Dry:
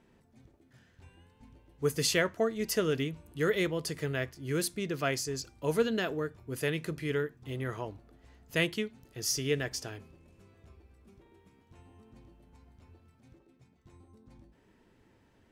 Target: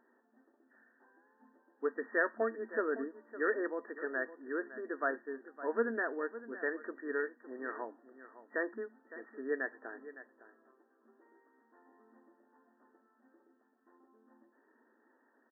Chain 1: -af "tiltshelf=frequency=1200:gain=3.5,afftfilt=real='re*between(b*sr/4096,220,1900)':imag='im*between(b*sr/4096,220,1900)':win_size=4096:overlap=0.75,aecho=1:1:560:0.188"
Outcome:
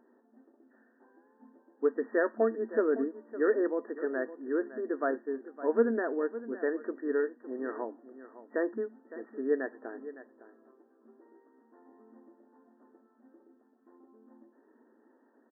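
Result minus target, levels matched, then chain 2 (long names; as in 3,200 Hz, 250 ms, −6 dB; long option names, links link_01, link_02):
1,000 Hz band −4.0 dB
-af "tiltshelf=frequency=1200:gain=-6,afftfilt=real='re*between(b*sr/4096,220,1900)':imag='im*between(b*sr/4096,220,1900)':win_size=4096:overlap=0.75,aecho=1:1:560:0.188"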